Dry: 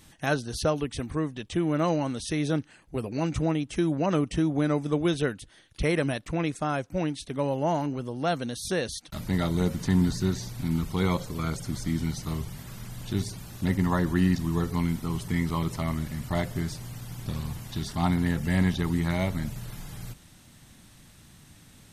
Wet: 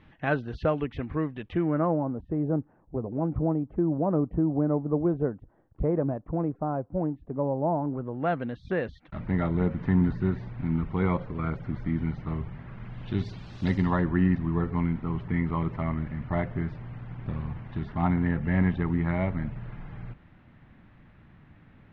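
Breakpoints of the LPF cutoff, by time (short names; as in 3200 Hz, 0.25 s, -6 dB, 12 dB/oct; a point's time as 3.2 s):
LPF 24 dB/oct
1.51 s 2600 Hz
2.03 s 1000 Hz
7.8 s 1000 Hz
8.27 s 2200 Hz
12.75 s 2200 Hz
13.72 s 5300 Hz
14.1 s 2200 Hz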